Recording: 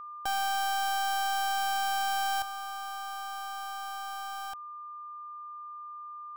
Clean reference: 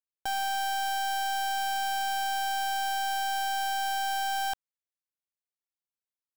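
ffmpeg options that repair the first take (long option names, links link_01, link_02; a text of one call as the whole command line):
ffmpeg -i in.wav -af "bandreject=frequency=1200:width=30,asetnsamples=nb_out_samples=441:pad=0,asendcmd='2.42 volume volume 10dB',volume=0dB" out.wav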